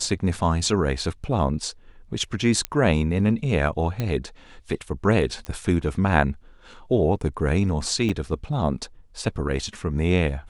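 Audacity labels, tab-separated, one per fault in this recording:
2.650000	2.650000	pop -9 dBFS
4.000000	4.000000	pop -13 dBFS
5.450000	5.450000	pop -19 dBFS
8.090000	8.090000	dropout 4.8 ms

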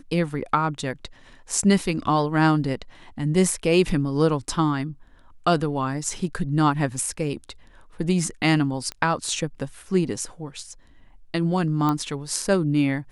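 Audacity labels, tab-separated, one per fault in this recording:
8.920000	8.920000	pop -17 dBFS
11.890000	11.890000	pop -12 dBFS

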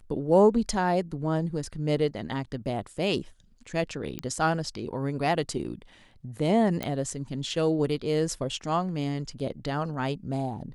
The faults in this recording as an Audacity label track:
4.190000	4.190000	pop -16 dBFS
6.830000	6.830000	pop -15 dBFS

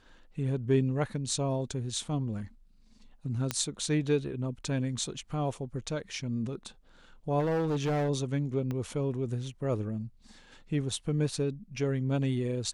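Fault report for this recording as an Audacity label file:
3.510000	3.510000	pop -13 dBFS
7.390000	8.100000	clipped -25.5 dBFS
8.710000	8.710000	pop -23 dBFS

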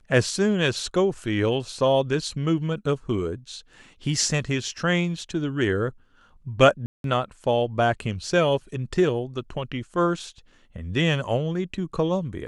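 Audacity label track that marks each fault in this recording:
6.860000	7.040000	dropout 182 ms

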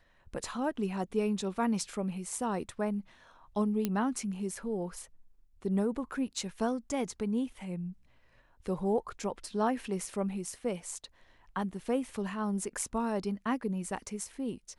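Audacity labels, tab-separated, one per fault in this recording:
3.850000	3.850000	pop -16 dBFS

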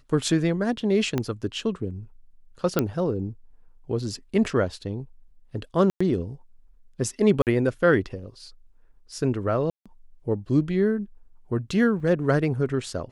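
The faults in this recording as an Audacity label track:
1.180000	1.180000	pop -12 dBFS
2.790000	2.790000	pop -7 dBFS
5.900000	6.000000	dropout 105 ms
7.420000	7.470000	dropout 48 ms
9.700000	9.860000	dropout 156 ms
12.000000	12.000000	dropout 3.8 ms

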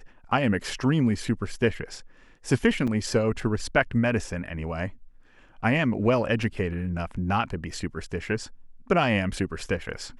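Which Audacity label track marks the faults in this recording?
2.870000	2.880000	dropout 5.8 ms
6.430000	6.430000	dropout 3 ms

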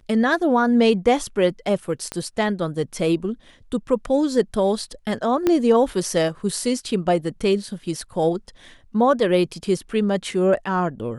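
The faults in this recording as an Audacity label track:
2.120000	2.120000	pop -13 dBFS
5.470000	5.470000	pop -7 dBFS

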